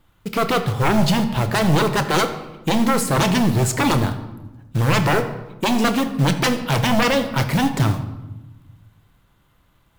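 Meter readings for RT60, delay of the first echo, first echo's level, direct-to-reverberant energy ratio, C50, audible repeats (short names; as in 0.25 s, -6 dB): 1.1 s, none, none, 7.0 dB, 10.5 dB, none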